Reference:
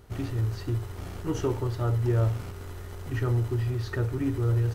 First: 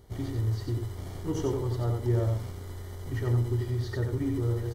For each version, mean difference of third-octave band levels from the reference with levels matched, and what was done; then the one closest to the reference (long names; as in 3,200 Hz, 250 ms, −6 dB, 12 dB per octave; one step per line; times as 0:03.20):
2.0 dB: Butterworth band-reject 2,600 Hz, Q 5
parametric band 1,400 Hz −8 dB 0.56 octaves
on a send: single-tap delay 91 ms −4.5 dB
on the sum: level −2 dB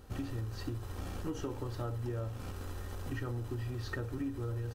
4.5 dB: notch filter 2,100 Hz, Q 11
comb filter 3.8 ms, depth 40%
downward compressor, threshold −33 dBFS, peak gain reduction 11.5 dB
level −1.5 dB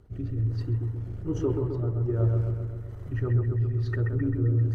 9.5 dB: spectral envelope exaggerated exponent 1.5
rotating-speaker cabinet horn 1.2 Hz
bucket-brigade delay 131 ms, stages 2,048, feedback 63%, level −4.5 dB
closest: first